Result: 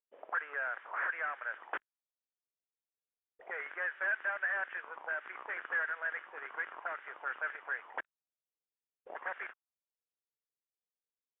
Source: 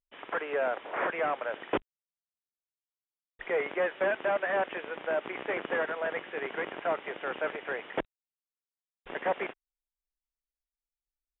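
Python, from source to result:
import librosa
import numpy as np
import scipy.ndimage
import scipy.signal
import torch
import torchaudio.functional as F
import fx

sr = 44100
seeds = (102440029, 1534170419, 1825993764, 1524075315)

y = fx.auto_wah(x, sr, base_hz=460.0, top_hz=1600.0, q=4.6, full_db=-30.0, direction='up')
y = F.gain(torch.from_numpy(y), 3.0).numpy()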